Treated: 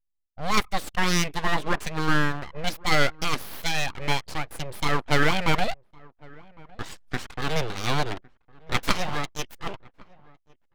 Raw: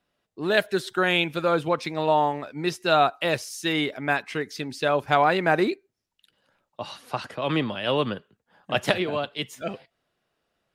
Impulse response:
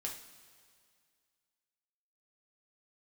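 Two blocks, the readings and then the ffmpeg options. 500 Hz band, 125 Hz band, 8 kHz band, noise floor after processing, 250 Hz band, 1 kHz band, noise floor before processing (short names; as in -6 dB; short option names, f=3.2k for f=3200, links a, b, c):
-7.5 dB, +3.5 dB, +6.5 dB, -69 dBFS, -2.5 dB, -3.0 dB, -79 dBFS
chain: -filter_complex "[0:a]aeval=exprs='abs(val(0))':c=same,anlmdn=0.0251,asplit=2[a][b];[b]adelay=1108,volume=-24dB,highshelf=f=4k:g=-24.9[c];[a][c]amix=inputs=2:normalize=0,volume=1.5dB"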